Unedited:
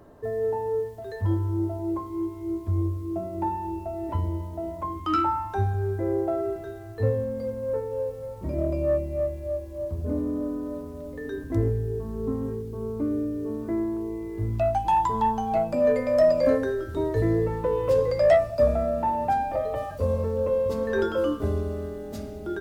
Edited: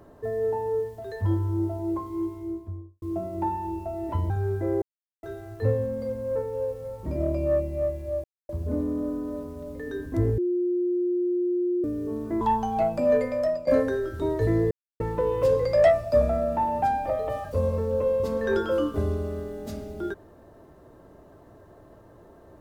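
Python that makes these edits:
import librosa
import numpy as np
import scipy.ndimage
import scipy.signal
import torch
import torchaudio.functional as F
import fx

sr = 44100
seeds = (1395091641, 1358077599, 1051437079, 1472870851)

y = fx.studio_fade_out(x, sr, start_s=2.23, length_s=0.79)
y = fx.edit(y, sr, fx.cut(start_s=4.3, length_s=1.38),
    fx.silence(start_s=6.2, length_s=0.41),
    fx.silence(start_s=9.62, length_s=0.25),
    fx.bleep(start_s=11.76, length_s=1.46, hz=355.0, db=-22.0),
    fx.cut(start_s=13.79, length_s=1.37),
    fx.fade_out_to(start_s=15.9, length_s=0.52, floor_db=-17.0),
    fx.insert_silence(at_s=17.46, length_s=0.29), tone=tone)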